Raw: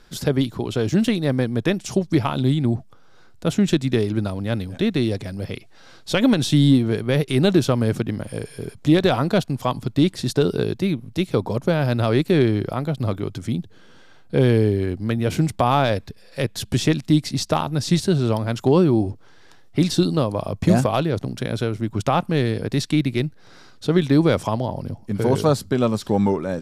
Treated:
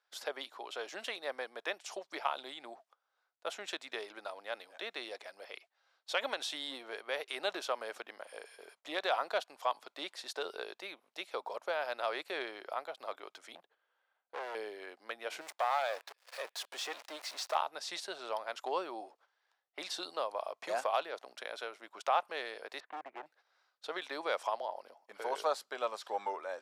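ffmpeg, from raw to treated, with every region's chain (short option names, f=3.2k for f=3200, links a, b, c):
-filter_complex "[0:a]asettb=1/sr,asplit=3[a][b][c];[a]atrim=end=13.554[d];[b]atrim=start=13.55:end=14.55,asetpts=PTS-STARTPTS,afade=t=in:d=0.004:c=qsin,afade=t=out:st=0.996:d=0.004:c=qsin,equalizer=f=5.9k:w=0.82:g=-11,asoftclip=type=hard:threshold=-21.5dB[e];[c]atrim=start=14.546[f];[d][e]acrossfade=d=0.004:c1=hsin:c2=qsin[g];[g][f]acrossfade=d=0.004:c1=qsin:c2=hsin,asettb=1/sr,asplit=3[h][i][j];[h]atrim=end=15.414[k];[i]atrim=start=15.41:end=17.55,asetpts=PTS-STARTPTS,afade=t=in:d=0.004:c=qsin,afade=t=out:st=2.136:d=0.004:c=qsin,aeval=exprs='val(0)+0.5*0.0501*sgn(val(0))':c=same,highpass=f=250:p=1,aeval=exprs='(tanh(4.47*val(0)+0.55)-tanh(0.55))/4.47':c=same[l];[j]atrim=start=17.546[m];[k][l]acrossfade=d=0.004:c1=hsin:c2=qsin[n];[n][m]acrossfade=d=0.004:c1=qsin:c2=hsin,asettb=1/sr,asplit=3[o][p][q];[o]atrim=end=22.804[r];[p]atrim=start=22.8:end=23.26,asetpts=PTS-STARTPTS,afade=t=in:d=0.004:c=qsin,afade=t=out:st=0.456:d=0.004:c=qsin,lowpass=f=1.7k:w=0.5412,lowpass=f=1.7k:w=1.3066,asoftclip=type=hard:threshold=-20dB[s];[q]atrim=start=23.256[t];[r][s]acrossfade=d=0.004:c1=hsin:c2=qsin[u];[u][t]acrossfade=d=0.004:c1=qsin:c2=hsin,agate=range=-15dB:threshold=-39dB:ratio=16:detection=peak,highpass=f=630:w=0.5412,highpass=f=630:w=1.3066,highshelf=f=4.9k:g=-10.5,volume=-7.5dB"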